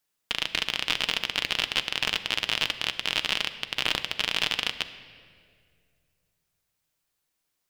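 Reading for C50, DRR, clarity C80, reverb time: 12.5 dB, 9.5 dB, 13.5 dB, 2.1 s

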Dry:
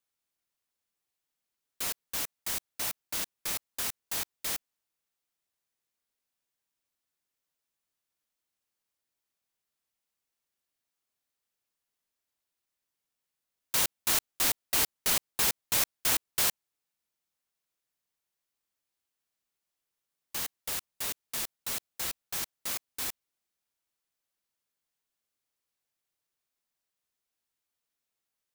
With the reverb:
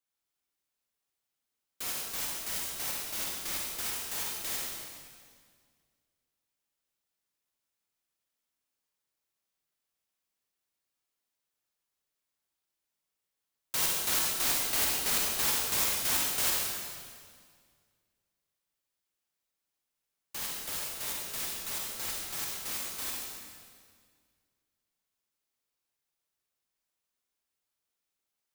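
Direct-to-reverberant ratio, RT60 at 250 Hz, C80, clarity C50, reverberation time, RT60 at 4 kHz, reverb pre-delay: -3.0 dB, 2.2 s, 1.0 dB, -1.5 dB, 1.9 s, 1.7 s, 38 ms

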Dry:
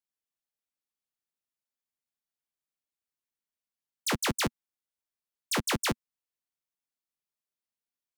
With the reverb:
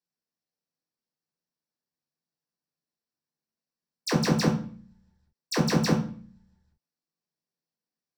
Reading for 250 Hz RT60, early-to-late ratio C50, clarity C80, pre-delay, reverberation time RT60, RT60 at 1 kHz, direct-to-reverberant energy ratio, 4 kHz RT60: 0.80 s, 7.0 dB, 11.5 dB, 3 ms, 0.45 s, 0.40 s, -2.0 dB, 0.40 s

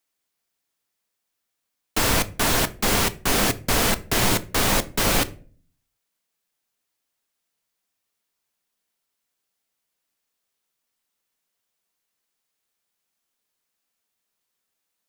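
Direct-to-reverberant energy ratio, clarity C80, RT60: 11.0 dB, 24.0 dB, 0.45 s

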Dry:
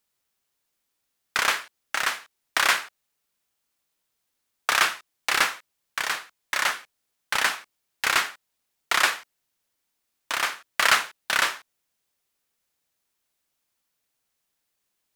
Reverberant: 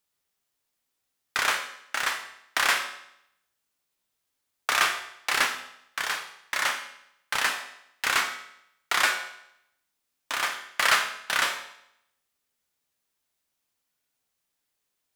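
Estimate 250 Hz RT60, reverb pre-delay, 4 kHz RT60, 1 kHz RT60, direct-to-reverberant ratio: 0.75 s, 6 ms, 0.70 s, 0.75 s, 5.0 dB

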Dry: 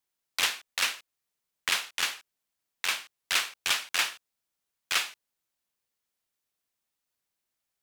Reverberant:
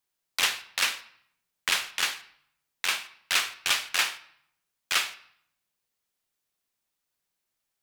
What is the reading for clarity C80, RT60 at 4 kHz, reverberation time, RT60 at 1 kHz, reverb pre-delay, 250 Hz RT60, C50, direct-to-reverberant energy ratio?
18.5 dB, 0.55 s, 0.65 s, 0.70 s, 5 ms, 0.95 s, 15.5 dB, 10.5 dB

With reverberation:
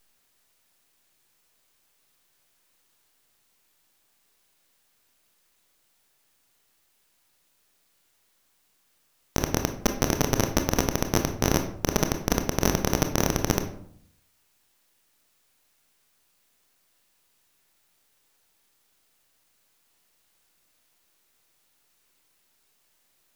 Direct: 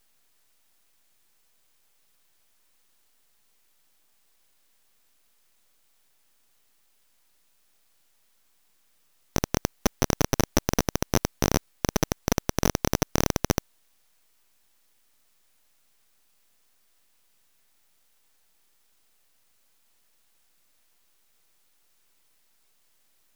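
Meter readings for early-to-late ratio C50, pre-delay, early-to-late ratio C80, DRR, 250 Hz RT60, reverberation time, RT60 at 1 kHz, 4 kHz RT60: 9.0 dB, 23 ms, 13.0 dB, 5.5 dB, 0.90 s, 0.65 s, 0.60 s, 0.40 s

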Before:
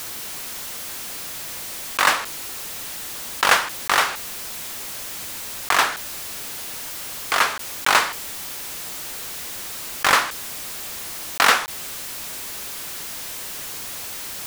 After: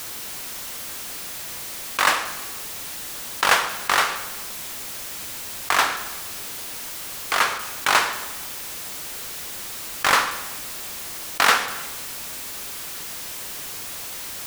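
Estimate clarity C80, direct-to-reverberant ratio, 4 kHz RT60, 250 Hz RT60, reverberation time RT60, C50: 11.5 dB, 9.5 dB, 1.1 s, 1.6 s, 1.3 s, 10.0 dB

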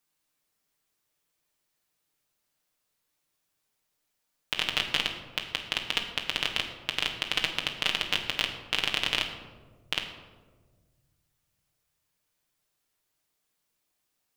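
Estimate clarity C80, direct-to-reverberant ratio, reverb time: 9.0 dB, 1.5 dB, 1.5 s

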